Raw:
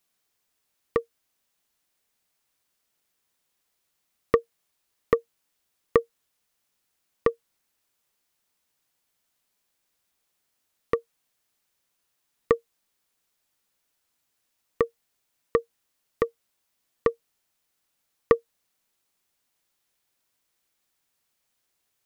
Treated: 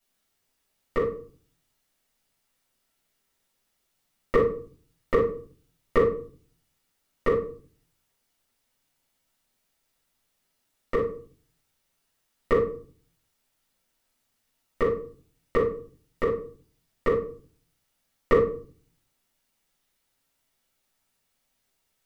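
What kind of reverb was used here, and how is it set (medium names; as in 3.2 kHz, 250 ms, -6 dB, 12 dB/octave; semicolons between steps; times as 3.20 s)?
simulated room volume 340 m³, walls furnished, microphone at 7.1 m; trim -8.5 dB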